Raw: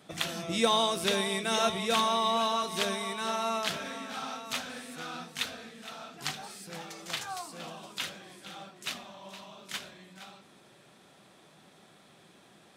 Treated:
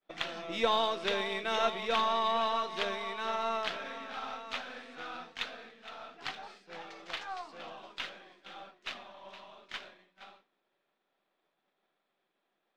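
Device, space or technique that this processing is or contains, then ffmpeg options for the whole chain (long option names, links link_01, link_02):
crystal radio: -af "highpass=350,lowpass=3400,lowpass=6500,aeval=exprs='if(lt(val(0),0),0.708*val(0),val(0))':channel_layout=same,agate=range=-33dB:threshold=-49dB:ratio=3:detection=peak"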